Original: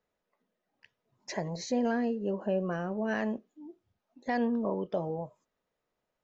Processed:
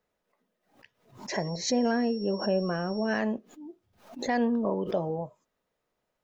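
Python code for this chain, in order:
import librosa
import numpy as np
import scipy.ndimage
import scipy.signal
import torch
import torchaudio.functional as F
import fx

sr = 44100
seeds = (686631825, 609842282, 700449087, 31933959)

y = fx.dmg_tone(x, sr, hz=5500.0, level_db=-48.0, at=(1.33, 3.17), fade=0.02)
y = fx.pre_swell(y, sr, db_per_s=120.0)
y = y * librosa.db_to_amplitude(3.0)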